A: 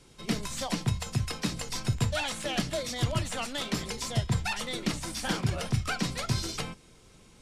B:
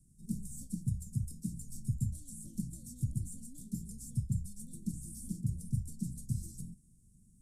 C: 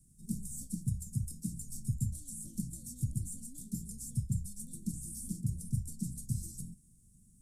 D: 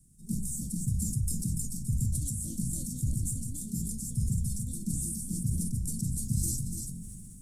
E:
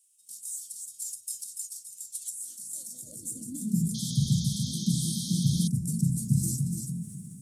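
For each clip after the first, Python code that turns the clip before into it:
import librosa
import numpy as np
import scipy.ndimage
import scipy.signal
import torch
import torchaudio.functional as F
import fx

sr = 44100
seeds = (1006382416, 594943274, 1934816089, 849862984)

y1 = scipy.signal.sosfilt(scipy.signal.ellip(3, 1.0, 60, [210.0, 8500.0], 'bandstop', fs=sr, output='sos'), x)
y1 = y1 * librosa.db_to_amplitude(-4.5)
y2 = fx.high_shelf(y1, sr, hz=3700.0, db=5.5)
y3 = y2 + 10.0 ** (-7.0 / 20.0) * np.pad(y2, (int(290 * sr / 1000.0), 0))[:len(y2)]
y3 = fx.sustainer(y3, sr, db_per_s=21.0)
y3 = y3 * librosa.db_to_amplitude(2.0)
y4 = fx.spec_paint(y3, sr, seeds[0], shape='noise', start_s=3.94, length_s=1.74, low_hz=3100.0, high_hz=6800.0, level_db=-39.0)
y4 = fx.filter_sweep_highpass(y4, sr, from_hz=2900.0, to_hz=150.0, start_s=2.1, end_s=3.87, q=3.3)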